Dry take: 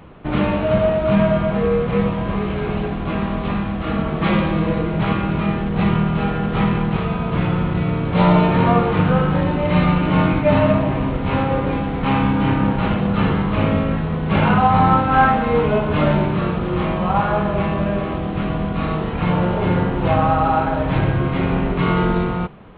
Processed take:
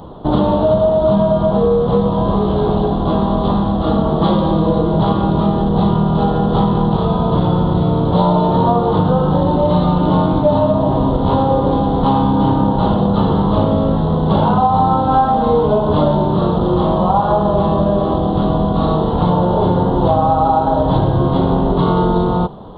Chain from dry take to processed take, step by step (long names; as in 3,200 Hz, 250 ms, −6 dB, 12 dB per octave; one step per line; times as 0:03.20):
drawn EQ curve 160 Hz 0 dB, 950 Hz +5 dB, 2,400 Hz −26 dB, 3,400 Hz +4 dB
downward compressor, threshold −17 dBFS, peak gain reduction 11 dB
level +7 dB